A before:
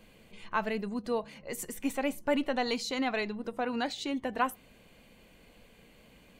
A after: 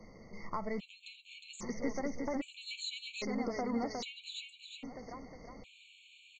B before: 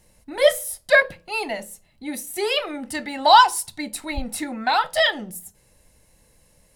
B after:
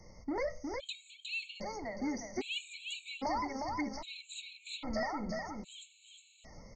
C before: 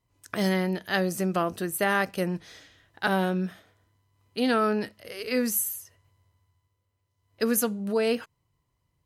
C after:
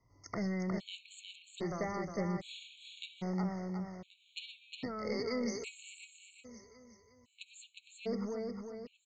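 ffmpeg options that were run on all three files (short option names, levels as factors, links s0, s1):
-filter_complex "[0:a]acrossover=split=110[s0][s1];[s1]acompressor=threshold=0.0158:ratio=12[s2];[s0][s2]amix=inputs=2:normalize=0,asuperstop=centerf=1600:order=8:qfactor=3.6,asoftclip=type=tanh:threshold=0.0237,asplit=2[s3][s4];[s4]aecho=0:1:360|720|1080|1440|1800|2160:0.631|0.297|0.139|0.0655|0.0308|0.0145[s5];[s3][s5]amix=inputs=2:normalize=0,aresample=16000,aresample=44100,afftfilt=real='re*gt(sin(2*PI*0.62*pts/sr)*(1-2*mod(floor(b*sr/1024/2200),2)),0)':imag='im*gt(sin(2*PI*0.62*pts/sr)*(1-2*mod(floor(b*sr/1024/2200),2)),0)':win_size=1024:overlap=0.75,volume=1.68"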